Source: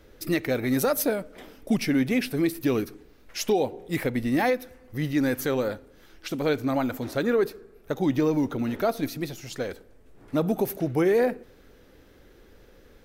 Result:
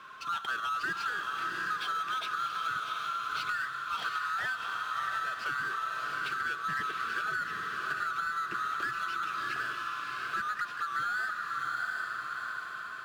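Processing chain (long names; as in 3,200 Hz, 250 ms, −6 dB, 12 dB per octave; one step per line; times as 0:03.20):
neighbouring bands swapped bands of 1,000 Hz
loudspeaker in its box 120–4,200 Hz, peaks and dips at 130 Hz +5 dB, 260 Hz −6 dB, 540 Hz −9 dB, 820 Hz −6 dB, 2,600 Hz +7 dB
power curve on the samples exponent 0.7
on a send: feedback delay with all-pass diffusion 709 ms, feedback 40%, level −3 dB
on the sum: downward compressor, threshold −23 dBFS, peak gain reduction 8.5 dB
level −7.5 dB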